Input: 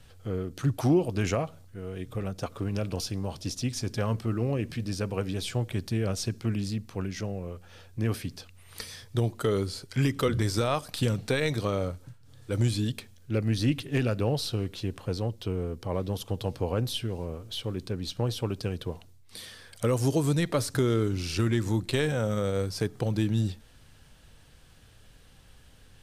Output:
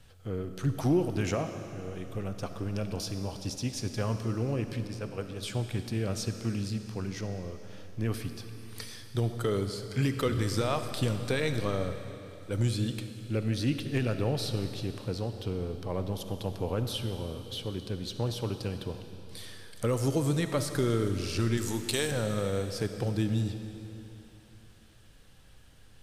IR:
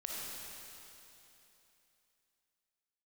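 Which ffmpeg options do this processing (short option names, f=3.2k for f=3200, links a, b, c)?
-filter_complex "[0:a]asettb=1/sr,asplit=3[a][b][c];[a]atrim=end=4.874[d];[b]atrim=start=4.87:end=5.43,asetpts=PTS-STARTPTS,afade=t=in:d=0.004:c=qsin,afade=t=out:st=0.556:d=0.004:c=qsin,agate=range=-33dB:threshold=-25dB:ratio=3:detection=peak[e];[c]atrim=start=5.426[f];[d][e]acrossfade=d=0.004:c1=hsin:c2=qsin[g];[g][f]acrossfade=d=0.004:c1=qsin:c2=hsin,asettb=1/sr,asplit=3[h][i][j];[h]atrim=end=21.574[k];[i]atrim=start=21.57:end=22.11,asetpts=PTS-STARTPTS,afade=t=in:d=0.004:c=qsin,afade=t=out:st=0.536:d=0.004:c=qsin,bass=f=250:g=-8,treble=f=4k:g=12[l];[j]atrim=start=22.106[m];[k][l]acrossfade=d=0.004:c1=hsin:c2=qsin[n];[n][m]acrossfade=d=0.004:c1=qsin:c2=hsin,asplit=2[o][p];[1:a]atrim=start_sample=2205[q];[p][q]afir=irnorm=-1:irlink=0,volume=-5dB[r];[o][r]amix=inputs=2:normalize=0,volume=-5.5dB"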